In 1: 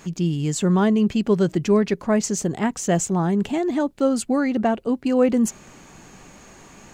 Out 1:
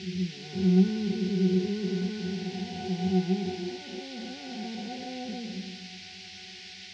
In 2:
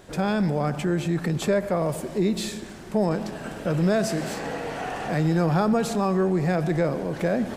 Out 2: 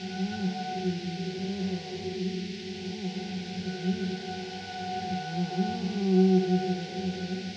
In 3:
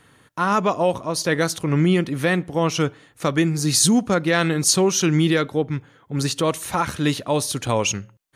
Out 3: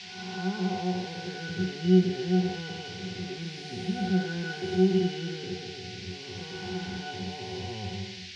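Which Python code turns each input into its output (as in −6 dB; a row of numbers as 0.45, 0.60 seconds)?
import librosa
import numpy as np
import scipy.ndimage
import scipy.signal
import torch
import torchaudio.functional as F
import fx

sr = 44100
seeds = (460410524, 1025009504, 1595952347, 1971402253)

y = fx.spec_blur(x, sr, span_ms=530.0)
y = fx.low_shelf(y, sr, hz=310.0, db=-5.0)
y = fx.octave_resonator(y, sr, note='F#', decay_s=0.26)
y = fx.dmg_noise_band(y, sr, seeds[0], low_hz=1900.0, high_hz=5400.0, level_db=-55.0)
y = y * 10.0 ** (-30 / 20.0) / np.sqrt(np.mean(np.square(y)))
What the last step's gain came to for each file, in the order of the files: +9.5, +10.0, +10.5 decibels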